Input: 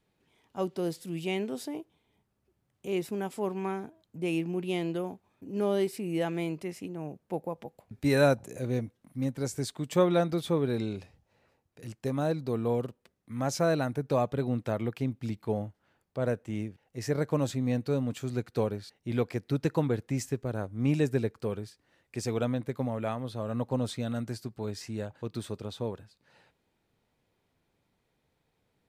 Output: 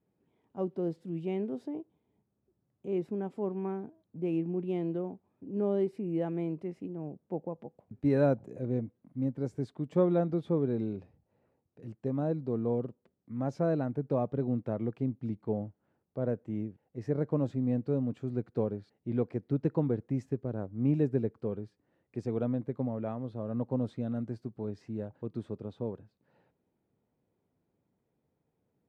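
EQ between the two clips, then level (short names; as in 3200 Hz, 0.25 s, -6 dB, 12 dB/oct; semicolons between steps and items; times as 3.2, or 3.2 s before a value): band-pass 240 Hz, Q 0.57; 0.0 dB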